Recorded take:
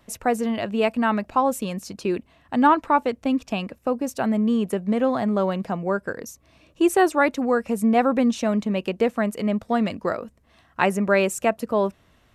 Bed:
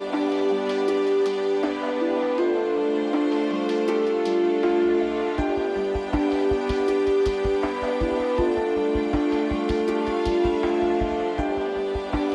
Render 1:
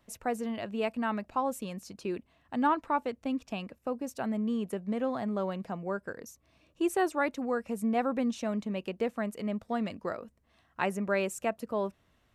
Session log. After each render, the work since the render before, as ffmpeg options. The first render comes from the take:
ffmpeg -i in.wav -af "volume=-10dB" out.wav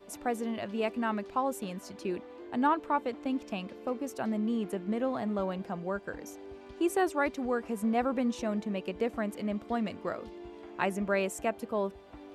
ffmpeg -i in.wav -i bed.wav -filter_complex "[1:a]volume=-24.5dB[link_01];[0:a][link_01]amix=inputs=2:normalize=0" out.wav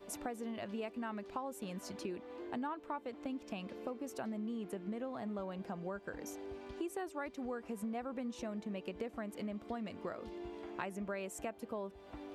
ffmpeg -i in.wav -af "acompressor=threshold=-39dB:ratio=5" out.wav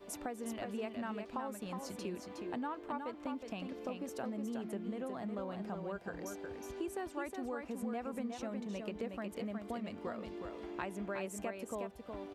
ffmpeg -i in.wav -af "aecho=1:1:365:0.531" out.wav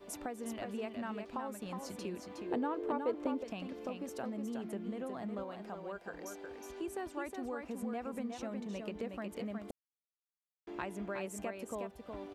ffmpeg -i in.wav -filter_complex "[0:a]asettb=1/sr,asplit=3[link_01][link_02][link_03];[link_01]atrim=end=2.514[link_04];[link_02]atrim=start=2.51:end=3.44,asetpts=PTS-STARTPTS,afade=type=in:duration=0.004:curve=qsin,afade=type=out:start_time=0.926:duration=0.004:curve=qsin,equalizer=frequency=420:width_type=o:width=0.83:gain=14.5[link_05];[link_03]atrim=start=3.436[link_06];[link_04][link_05]acrossfade=duration=0.004:curve1=hsin:curve2=qsin[link_07];[link_07][link_06]acrossfade=duration=0.004:curve1=qsin:curve2=hsin,asettb=1/sr,asplit=3[link_08][link_09][link_10];[link_08]atrim=end=5.434[link_11];[link_09]atrim=start=5.43:end=6.82,asetpts=PTS-STARTPTS,afade=type=in:duration=0.004:curve=qsin,afade=type=out:start_time=1.386:duration=0.004:curve=qsin,equalizer=frequency=110:width_type=o:width=1.9:gain=-12[link_12];[link_10]atrim=start=6.816[link_13];[link_11][link_12]acrossfade=duration=0.004:curve1=hsin:curve2=qsin[link_14];[link_14][link_13]acrossfade=duration=0.004:curve1=qsin:curve2=hsin,asplit=3[link_15][link_16][link_17];[link_15]atrim=end=9.71,asetpts=PTS-STARTPTS,afade=type=out:start_time=9.706:duration=0.004:curve=hsin[link_18];[link_16]atrim=start=9.71:end=10.67,asetpts=PTS-STARTPTS,volume=0[link_19];[link_17]atrim=start=10.67,asetpts=PTS-STARTPTS,afade=type=in:duration=0.004:curve=hsin[link_20];[link_18][link_19][link_20]concat=n=3:v=0:a=1" out.wav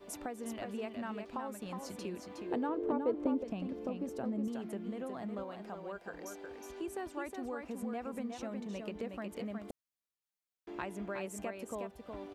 ffmpeg -i in.wav -filter_complex "[0:a]asettb=1/sr,asplit=3[link_01][link_02][link_03];[link_01]atrim=end=2.694[link_04];[link_02]atrim=start=2.69:end=4.48,asetpts=PTS-STARTPTS,afade=type=in:duration=0.004:curve=qsin,afade=type=out:start_time=1.786:duration=0.004:curve=qsin,tiltshelf=frequency=680:gain=6[link_05];[link_03]atrim=start=4.476[link_06];[link_04][link_05]acrossfade=duration=0.004:curve1=hsin:curve2=qsin[link_07];[link_07][link_06]acrossfade=duration=0.004:curve1=qsin:curve2=hsin" out.wav

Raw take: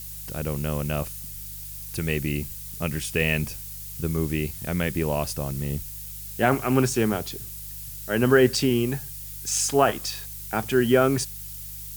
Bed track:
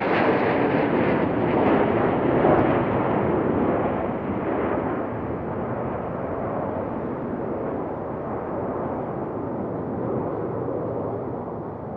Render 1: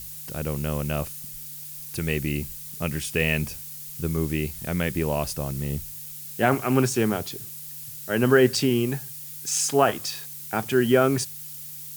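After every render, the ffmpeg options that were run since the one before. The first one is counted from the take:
ffmpeg -i in.wav -af "bandreject=frequency=50:width_type=h:width=4,bandreject=frequency=100:width_type=h:width=4" out.wav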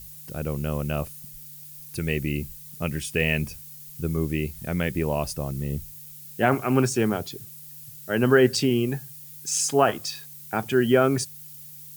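ffmpeg -i in.wav -af "afftdn=noise_reduction=7:noise_floor=-39" out.wav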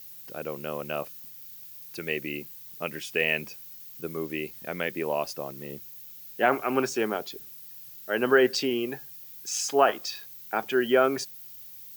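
ffmpeg -i in.wav -af "highpass=380,equalizer=frequency=9200:width_type=o:width=0.64:gain=-13.5" out.wav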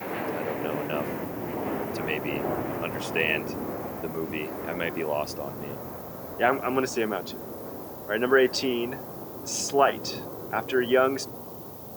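ffmpeg -i in.wav -i bed.wav -filter_complex "[1:a]volume=-11.5dB[link_01];[0:a][link_01]amix=inputs=2:normalize=0" out.wav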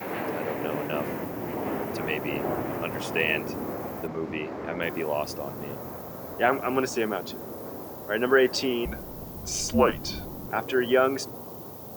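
ffmpeg -i in.wav -filter_complex "[0:a]asplit=3[link_01][link_02][link_03];[link_01]afade=type=out:start_time=4.06:duration=0.02[link_04];[link_02]lowpass=4500,afade=type=in:start_time=4.06:duration=0.02,afade=type=out:start_time=4.81:duration=0.02[link_05];[link_03]afade=type=in:start_time=4.81:duration=0.02[link_06];[link_04][link_05][link_06]amix=inputs=3:normalize=0,asettb=1/sr,asplit=3[link_07][link_08][link_09];[link_07]atrim=end=8.854[link_10];[link_08]atrim=start=8.85:end=10.48,asetpts=PTS-STARTPTS,afade=type=in:duration=0.004:curve=qsin,afade=type=out:start_time=1.626:duration=0.004:curve=qsin,afreqshift=-190[link_11];[link_09]atrim=start=10.476[link_12];[link_10][link_11]acrossfade=duration=0.004:curve1=hsin:curve2=qsin[link_13];[link_13][link_12]acrossfade=duration=0.004:curve1=qsin:curve2=hsin" out.wav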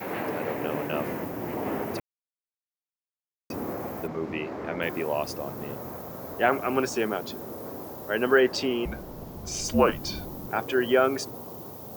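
ffmpeg -i in.wav -filter_complex "[0:a]asettb=1/sr,asplit=3[link_01][link_02][link_03];[link_01]atrim=end=8.404[link_04];[link_02]atrim=start=8.4:end=9.65,asetpts=PTS-STARTPTS,afade=type=in:duration=0.004:curve=qsin,afade=type=out:start_time=1.246:duration=0.004:curve=qsin,highshelf=frequency=7000:gain=-7[link_05];[link_03]atrim=start=9.646[link_06];[link_04][link_05]acrossfade=duration=0.004:curve1=hsin:curve2=qsin[link_07];[link_07][link_06]acrossfade=duration=0.004:curve1=qsin:curve2=hsin,asplit=3[link_08][link_09][link_10];[link_08]atrim=end=2,asetpts=PTS-STARTPTS,afade=type=out:start_time=1.996:duration=0.004:curve=hsin[link_11];[link_09]atrim=start=2:end=3.5,asetpts=PTS-STARTPTS,volume=0[link_12];[link_10]atrim=start=3.5,asetpts=PTS-STARTPTS,afade=type=in:duration=0.004:curve=hsin[link_13];[link_11][link_12][link_13]concat=n=3:v=0:a=1" out.wav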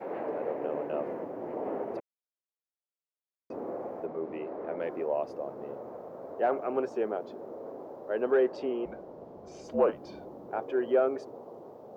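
ffmpeg -i in.wav -af "asoftclip=type=tanh:threshold=-12dB,bandpass=frequency=530:width_type=q:width=1.5:csg=0" out.wav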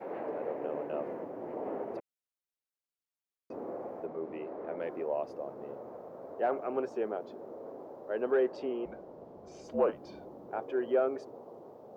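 ffmpeg -i in.wav -af "volume=-3dB" out.wav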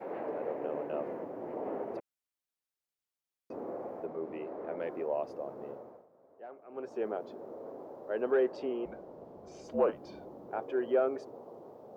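ffmpeg -i in.wav -filter_complex "[0:a]asplit=3[link_01][link_02][link_03];[link_01]atrim=end=6.07,asetpts=PTS-STARTPTS,afade=type=out:start_time=5.68:duration=0.39:silence=0.133352[link_04];[link_02]atrim=start=6.07:end=6.68,asetpts=PTS-STARTPTS,volume=-17.5dB[link_05];[link_03]atrim=start=6.68,asetpts=PTS-STARTPTS,afade=type=in:duration=0.39:silence=0.133352[link_06];[link_04][link_05][link_06]concat=n=3:v=0:a=1" out.wav

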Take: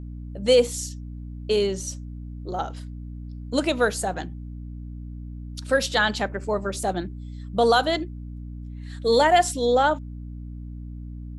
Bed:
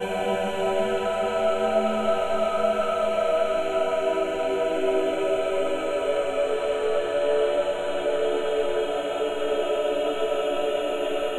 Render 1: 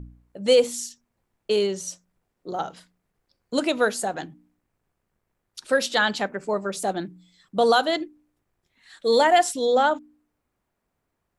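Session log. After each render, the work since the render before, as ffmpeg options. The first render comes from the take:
ffmpeg -i in.wav -af "bandreject=frequency=60:width_type=h:width=4,bandreject=frequency=120:width_type=h:width=4,bandreject=frequency=180:width_type=h:width=4,bandreject=frequency=240:width_type=h:width=4,bandreject=frequency=300:width_type=h:width=4" out.wav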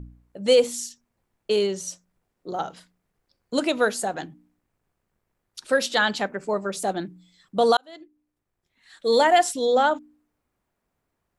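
ffmpeg -i in.wav -filter_complex "[0:a]asplit=2[link_01][link_02];[link_01]atrim=end=7.77,asetpts=PTS-STARTPTS,afade=type=out:start_time=7.766:duration=0.004:curve=hsin[link_03];[link_02]atrim=start=7.77,asetpts=PTS-STARTPTS,afade=type=in:duration=1.42[link_04];[link_03][link_04]concat=n=2:v=0:a=1" out.wav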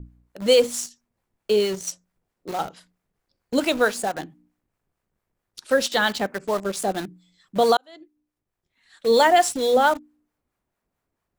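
ffmpeg -i in.wav -filter_complex "[0:a]asplit=2[link_01][link_02];[link_02]acrusher=bits=4:mix=0:aa=0.000001,volume=-5dB[link_03];[link_01][link_03]amix=inputs=2:normalize=0,acrossover=split=630[link_04][link_05];[link_04]aeval=exprs='val(0)*(1-0.5/2+0.5/2*cos(2*PI*4.5*n/s))':channel_layout=same[link_06];[link_05]aeval=exprs='val(0)*(1-0.5/2-0.5/2*cos(2*PI*4.5*n/s))':channel_layout=same[link_07];[link_06][link_07]amix=inputs=2:normalize=0" out.wav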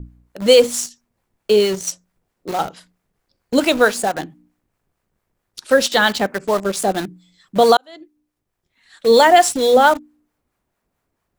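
ffmpeg -i in.wav -af "volume=6dB,alimiter=limit=-1dB:level=0:latency=1" out.wav

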